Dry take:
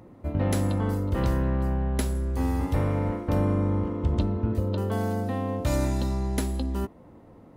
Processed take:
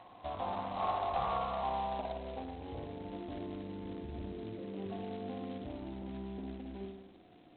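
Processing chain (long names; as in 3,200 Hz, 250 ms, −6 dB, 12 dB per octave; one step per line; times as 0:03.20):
0:00.75–0:01.63: lower of the sound and its delayed copy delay 1.5 ms
0:03.19–0:03.63: comb filter 2.9 ms, depth 33%
0:04.32–0:04.86: Chebyshev band-pass filter 110–3,100 Hz, order 5
brickwall limiter −22 dBFS, peak gain reduction 8.5 dB
formant resonators in series a
harmonic generator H 2 −33 dB, 6 −41 dB, 7 −24 dB, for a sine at −21 dBFS
low-pass filter sweep 1,500 Hz → 330 Hz, 0:01.25–0:02.88
flutter between parallel walls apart 9.7 metres, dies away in 0.88 s
level +14.5 dB
G.726 16 kbit/s 8,000 Hz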